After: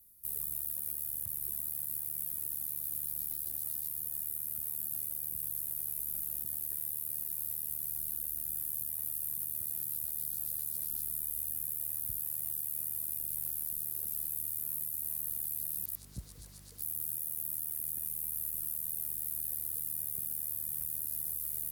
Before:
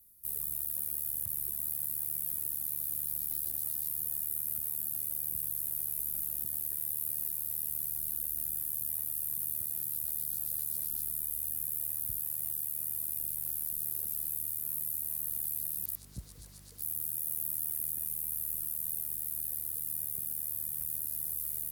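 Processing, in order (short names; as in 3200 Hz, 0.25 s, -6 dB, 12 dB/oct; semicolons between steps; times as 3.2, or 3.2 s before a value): limiter -23 dBFS, peak gain reduction 4.5 dB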